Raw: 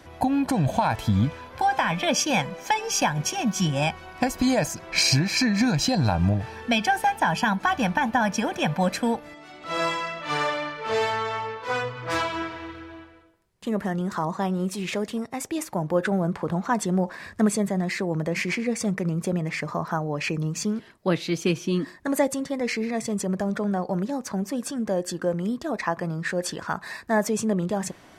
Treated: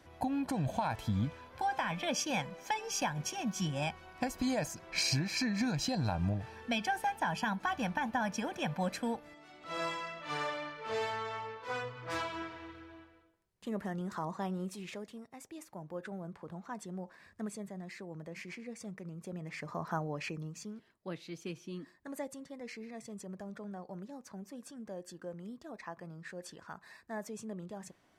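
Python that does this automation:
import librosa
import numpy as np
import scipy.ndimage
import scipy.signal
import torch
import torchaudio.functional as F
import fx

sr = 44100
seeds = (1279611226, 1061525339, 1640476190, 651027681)

y = fx.gain(x, sr, db=fx.line((14.55, -11.0), (15.2, -19.0), (19.18, -19.0), (19.98, -8.0), (20.67, -18.5)))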